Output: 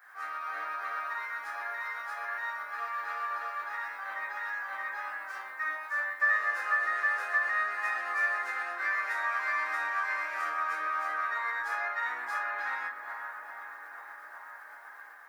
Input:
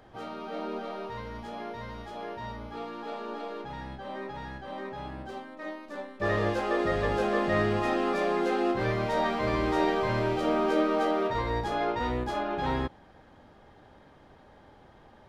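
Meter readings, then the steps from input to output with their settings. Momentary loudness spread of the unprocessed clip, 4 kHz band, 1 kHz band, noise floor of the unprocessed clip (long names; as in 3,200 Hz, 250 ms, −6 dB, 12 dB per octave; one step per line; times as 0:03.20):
14 LU, −9.5 dB, −1.5 dB, −55 dBFS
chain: bit-depth reduction 12 bits, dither none
on a send: tape delay 421 ms, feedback 83%, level −14.5 dB, low-pass 2,600 Hz
on the sum: shaped tremolo saw up 8 Hz, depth 40%
high shelf with overshoot 2,300 Hz −12 dB, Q 3
downward compressor 4 to 1, threshold −33 dBFS, peak gain reduction 10.5 dB
Chebyshev high-pass filter 1,600 Hz, order 2
spectral tilt +4 dB per octave
rectangular room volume 210 cubic metres, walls furnished, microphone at 3.4 metres
automatic gain control gain up to 3 dB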